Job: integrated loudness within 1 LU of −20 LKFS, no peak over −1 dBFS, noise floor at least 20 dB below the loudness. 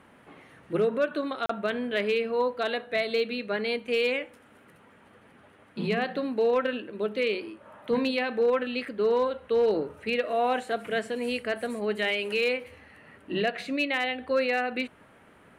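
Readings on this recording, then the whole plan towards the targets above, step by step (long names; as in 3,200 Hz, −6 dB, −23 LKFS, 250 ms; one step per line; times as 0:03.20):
share of clipped samples 0.2%; peaks flattened at −17.5 dBFS; number of dropouts 1; longest dropout 34 ms; integrated loudness −28.0 LKFS; sample peak −17.5 dBFS; target loudness −20.0 LKFS
→ clipped peaks rebuilt −17.5 dBFS
repair the gap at 0:01.46, 34 ms
level +8 dB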